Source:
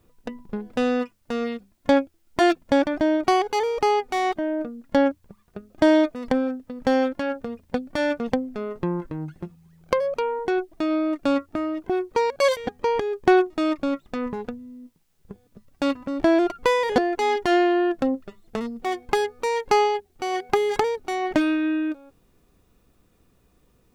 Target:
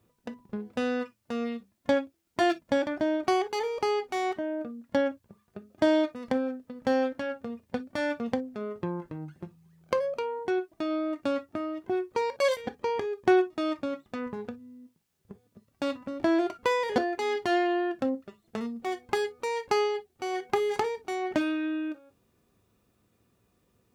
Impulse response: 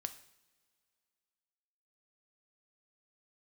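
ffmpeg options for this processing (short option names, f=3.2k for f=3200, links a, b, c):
-filter_complex "[0:a]highpass=70[a];[1:a]atrim=start_sample=2205,atrim=end_sample=4410,asetrate=66150,aresample=44100[b];[a][b]afir=irnorm=-1:irlink=0"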